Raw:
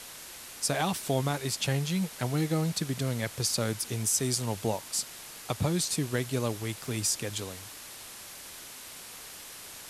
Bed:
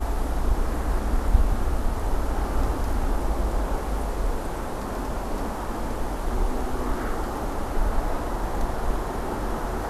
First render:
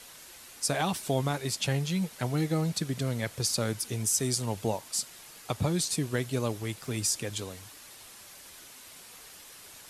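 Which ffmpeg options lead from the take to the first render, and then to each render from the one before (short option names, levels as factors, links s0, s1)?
-af "afftdn=nr=6:nf=-46"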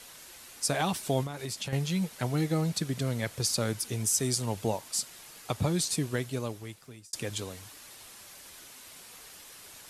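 -filter_complex "[0:a]asettb=1/sr,asplit=3[s0][s1][s2];[s0]atrim=end=1.234[s3];[s1]atrim=start=1.23:end=1.73,asetpts=PTS-STARTPTS,afade=t=in:d=0.004:c=qsin,afade=t=out:st=0.496:d=0.004:c=qsin,acompressor=threshold=0.0282:ratio=10:attack=3.2:release=140:knee=1:detection=peak[s4];[s2]atrim=start=1.726[s5];[s3][s4]acrossfade=d=0.004:c1=hsin:c2=qsin[s6];[s6][s5]acrossfade=d=0.004:c1=qsin:c2=hsin,asplit=2[s7][s8];[s7]atrim=end=7.13,asetpts=PTS-STARTPTS,afade=t=out:st=6.01:d=1.12[s9];[s8]atrim=start=7.13,asetpts=PTS-STARTPTS,afade=t=in:d=0.004:c=hsin[s10];[s9][s10]concat=n=2:v=0:a=1"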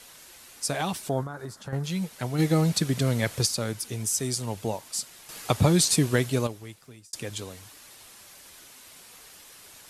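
-filter_complex "[0:a]asettb=1/sr,asplit=3[s0][s1][s2];[s0]atrim=end=1.094[s3];[s1]atrim=start=1.09:end=1.84,asetpts=PTS-STARTPTS,afade=t=in:d=0.004:c=qsin,afade=t=out:st=0.746:d=0.004:c=qsin,highshelf=f=1900:t=q:w=3:g=-8.5[s4];[s2]atrim=start=1.836[s5];[s3][s4]acrossfade=d=0.004:c1=hsin:c2=qsin[s6];[s6][s5]acrossfade=d=0.004:c1=qsin:c2=hsin,asplit=3[s7][s8][s9];[s7]afade=t=out:st=2.38:d=0.02[s10];[s8]acontrast=57,afade=t=in:st=2.38:d=0.02,afade=t=out:st=3.45:d=0.02[s11];[s9]afade=t=in:st=3.45:d=0.02[s12];[s10][s11][s12]amix=inputs=3:normalize=0,asplit=3[s13][s14][s15];[s13]atrim=end=5.292[s16];[s14]atrim=start=5.288:end=6.472,asetpts=PTS-STARTPTS,volume=2.51[s17];[s15]atrim=start=6.468[s18];[s16][s17]acrossfade=d=0.004:c1=hsin:c2=hsin[s19];[s19][s18]acrossfade=d=0.004:c1=hsin:c2=hsin"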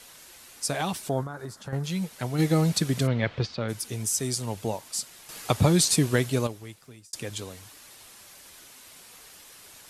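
-filter_complex "[0:a]asplit=3[s0][s1][s2];[s0]afade=t=out:st=3.06:d=0.02[s3];[s1]lowpass=f=3600:w=0.5412,lowpass=f=3600:w=1.3066,afade=t=in:st=3.06:d=0.02,afade=t=out:st=3.68:d=0.02[s4];[s2]afade=t=in:st=3.68:d=0.02[s5];[s3][s4][s5]amix=inputs=3:normalize=0"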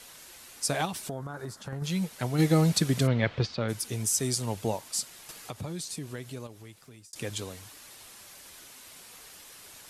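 -filter_complex "[0:a]asettb=1/sr,asplit=3[s0][s1][s2];[s0]atrim=end=0.854[s3];[s1]atrim=start=0.85:end=1.82,asetpts=PTS-STARTPTS,afade=t=in:d=0.004:c=qsin,afade=t=out:st=0.966:d=0.004:c=qsin,acompressor=threshold=0.0282:ratio=6:attack=3.2:release=140:knee=1:detection=peak[s4];[s2]atrim=start=1.816[s5];[s3][s4]acrossfade=d=0.004:c1=hsin:c2=qsin[s6];[s6][s5]acrossfade=d=0.004:c1=qsin:c2=hsin,asettb=1/sr,asplit=3[s7][s8][s9];[s7]atrim=end=5.314[s10];[s8]atrim=start=5.31:end=7.16,asetpts=PTS-STARTPTS,afade=t=in:d=0.004:c=qsin,afade=t=out:st=1.846:d=0.004:c=qsin,acompressor=threshold=0.00447:ratio=2:attack=3.2:release=140:knee=1:detection=peak[s11];[s9]atrim=start=7.156[s12];[s10][s11]acrossfade=d=0.004:c1=hsin:c2=qsin[s13];[s13][s12]acrossfade=d=0.004:c1=qsin:c2=hsin"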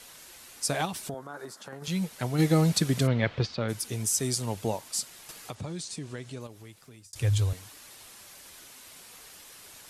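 -filter_complex "[0:a]asettb=1/sr,asplit=3[s0][s1][s2];[s0]atrim=end=1.144[s3];[s1]atrim=start=1.14:end=1.88,asetpts=PTS-STARTPTS,afade=t=in:d=0.004:c=qsin,afade=t=out:st=0.736:d=0.004:c=qsin,highpass=280[s4];[s2]atrim=start=1.876[s5];[s3][s4]acrossfade=d=0.004:c1=hsin:c2=qsin[s6];[s6][s5]acrossfade=d=0.004:c1=qsin:c2=hsin,asettb=1/sr,asplit=3[s7][s8][s9];[s7]atrim=end=5.554[s10];[s8]atrim=start=5.55:end=6.41,asetpts=PTS-STARTPTS,afade=t=in:d=0.004:c=qsin,afade=t=out:st=0.856:d=0.004:c=qsin,lowpass=f=9000:w=0.5412,lowpass=f=9000:w=1.3066[s11];[s9]atrim=start=6.406[s12];[s10][s11]acrossfade=d=0.004:c1=hsin:c2=qsin[s13];[s13][s12]acrossfade=d=0.004:c1=qsin:c2=hsin,asettb=1/sr,asplit=3[s14][s15][s16];[s14]atrim=end=7.054[s17];[s15]atrim=start=7.05:end=7.53,asetpts=PTS-STARTPTS,afade=t=in:d=0.004:c=qsin,afade=t=out:st=0.476:d=0.004:c=qsin,lowshelf=f=140:t=q:w=3:g=12[s18];[s16]atrim=start=7.526[s19];[s17][s18]acrossfade=d=0.004:c1=hsin:c2=qsin[s20];[s20][s19]acrossfade=d=0.004:c1=qsin:c2=hsin"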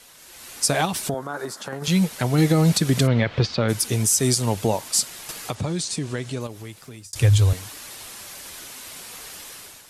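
-af "alimiter=limit=0.112:level=0:latency=1:release=141,dynaudnorm=f=160:g=5:m=3.35"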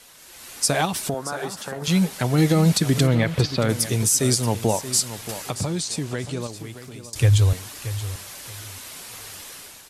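-af "aecho=1:1:627|1254|1881:0.224|0.0493|0.0108"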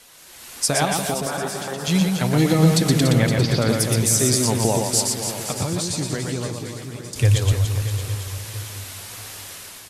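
-af "aecho=1:1:120|288|523.2|852.5|1313:0.631|0.398|0.251|0.158|0.1"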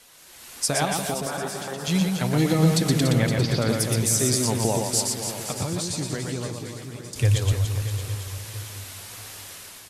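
-af "volume=0.668"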